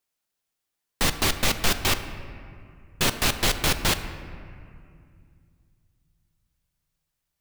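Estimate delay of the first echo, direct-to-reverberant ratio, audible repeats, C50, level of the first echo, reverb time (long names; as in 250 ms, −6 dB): no echo audible, 9.0 dB, no echo audible, 10.5 dB, no echo audible, 2.3 s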